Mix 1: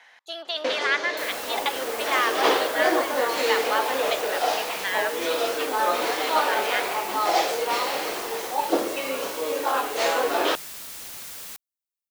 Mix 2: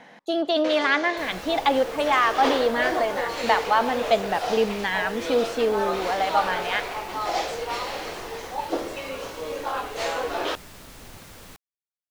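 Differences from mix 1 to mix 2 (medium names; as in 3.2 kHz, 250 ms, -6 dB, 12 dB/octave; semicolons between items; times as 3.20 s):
speech: remove high-pass 1.3 kHz 12 dB/octave; first sound -4.5 dB; second sound: add tilt EQ -3.5 dB/octave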